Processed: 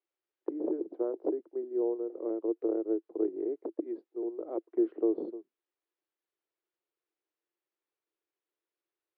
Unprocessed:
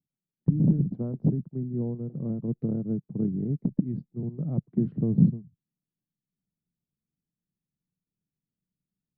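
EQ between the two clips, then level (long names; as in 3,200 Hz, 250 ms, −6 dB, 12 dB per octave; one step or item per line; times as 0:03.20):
Chebyshev high-pass filter 330 Hz, order 6
high-frequency loss of the air 290 metres
+8.5 dB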